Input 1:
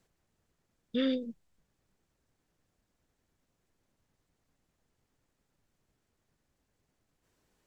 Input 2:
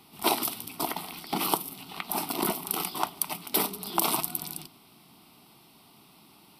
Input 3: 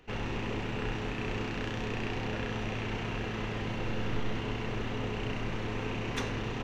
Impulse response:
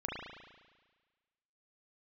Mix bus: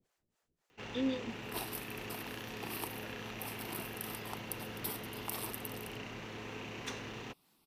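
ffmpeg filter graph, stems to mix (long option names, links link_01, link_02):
-filter_complex "[0:a]lowshelf=frequency=190:gain=-8.5,acrossover=split=460[link_01][link_02];[link_01]aeval=exprs='val(0)*(1-1/2+1/2*cos(2*PI*3.8*n/s))':channel_layout=same[link_03];[link_02]aeval=exprs='val(0)*(1-1/2-1/2*cos(2*PI*3.8*n/s))':channel_layout=same[link_04];[link_03][link_04]amix=inputs=2:normalize=0,volume=2dB[link_05];[1:a]highshelf=frequency=5100:gain=5,adelay=1300,volume=-18dB[link_06];[2:a]highpass=frequency=160:poles=1,highshelf=frequency=3700:gain=8,adelay=700,volume=-8.5dB[link_07];[link_05][link_06][link_07]amix=inputs=3:normalize=0"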